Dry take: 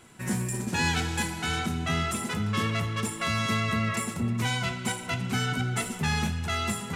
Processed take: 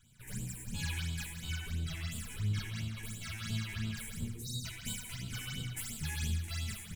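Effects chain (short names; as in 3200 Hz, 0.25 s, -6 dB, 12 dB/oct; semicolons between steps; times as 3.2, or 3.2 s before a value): minimum comb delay 1.3 ms; 4.11–6.64 high shelf 4200 Hz +5.5 dB; 4.28–4.65 spectral delete 510–3600 Hz; passive tone stack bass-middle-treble 6-0-2; non-linear reverb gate 0.26 s falling, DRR -1 dB; phaser stages 8, 2.9 Hz, lowest notch 160–1900 Hz; outdoor echo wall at 28 m, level -16 dB; gain +5.5 dB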